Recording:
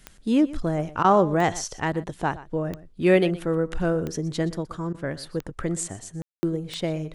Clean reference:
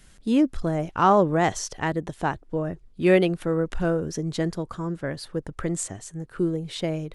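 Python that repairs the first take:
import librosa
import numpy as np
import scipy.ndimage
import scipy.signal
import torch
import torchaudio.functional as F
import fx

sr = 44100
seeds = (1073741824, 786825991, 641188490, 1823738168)

y = fx.fix_declick_ar(x, sr, threshold=10.0)
y = fx.fix_ambience(y, sr, seeds[0], print_start_s=5.14, print_end_s=5.64, start_s=6.22, end_s=6.43)
y = fx.fix_interpolate(y, sr, at_s=(1.03, 4.93), length_ms=12.0)
y = fx.fix_echo_inverse(y, sr, delay_ms=121, level_db=-17.5)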